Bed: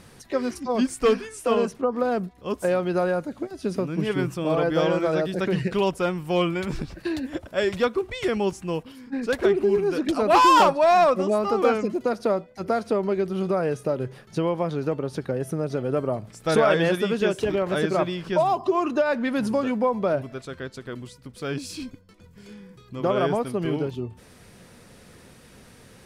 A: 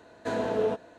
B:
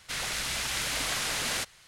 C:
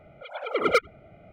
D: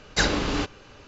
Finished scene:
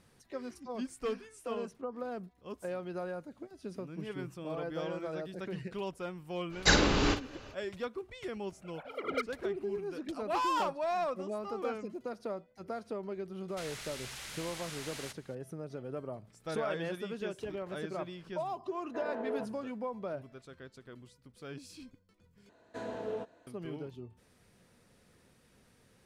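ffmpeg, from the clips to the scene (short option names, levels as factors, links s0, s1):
-filter_complex "[1:a]asplit=2[s0][s1];[0:a]volume=0.168[s2];[4:a]asplit=2[s3][s4];[s4]adelay=49,volume=0.376[s5];[s3][s5]amix=inputs=2:normalize=0[s6];[3:a]asplit=2[s7][s8];[s8]adelay=192.4,volume=0.0355,highshelf=f=4000:g=-4.33[s9];[s7][s9]amix=inputs=2:normalize=0[s10];[2:a]acompressor=threshold=0.01:ratio=4:attack=21:release=30:knee=1:detection=peak[s11];[s0]acrossover=split=280 2200:gain=0.0891 1 0.0891[s12][s13][s14];[s12][s13][s14]amix=inputs=3:normalize=0[s15];[s2]asplit=2[s16][s17];[s16]atrim=end=22.494[s18];[s1]atrim=end=0.98,asetpts=PTS-STARTPTS,volume=0.282[s19];[s17]atrim=start=23.466[s20];[s6]atrim=end=1.07,asetpts=PTS-STARTPTS,volume=0.794,afade=t=in:d=0.05,afade=t=out:st=1.02:d=0.05,adelay=6490[s21];[s10]atrim=end=1.32,asetpts=PTS-STARTPTS,volume=0.224,afade=t=in:d=0.004:c=hsin,afade=t=out:st=1.316:d=0.004:c=hsin,adelay=8430[s22];[s11]atrim=end=1.87,asetpts=PTS-STARTPTS,volume=0.398,afade=t=in:d=0.004:c=hsin,afade=t=out:st=1.866:d=0.004:c=hsin,adelay=594468S[s23];[s15]atrim=end=0.98,asetpts=PTS-STARTPTS,volume=0.376,afade=t=in:d=0.004:c=hsin,afade=t=out:st=0.976:d=0.004:c=hsin,adelay=18690[s24];[s18][s19]acrossfade=d=0.004:c1=hsin:c2=hsin[s25];[s25][s20]acrossfade=d=0.004:c1=hsin:c2=hsin[s26];[s26][s21][s22][s23][s24]amix=inputs=5:normalize=0"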